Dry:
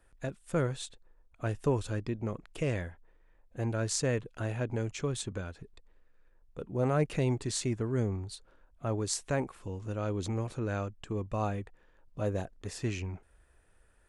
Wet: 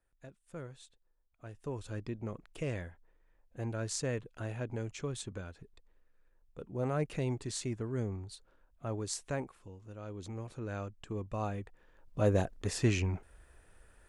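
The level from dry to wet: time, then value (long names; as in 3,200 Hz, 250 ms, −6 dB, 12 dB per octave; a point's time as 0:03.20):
0:01.52 −15 dB
0:02.00 −5 dB
0:09.34 −5 dB
0:09.81 −13 dB
0:10.97 −4 dB
0:11.50 −4 dB
0:12.33 +5 dB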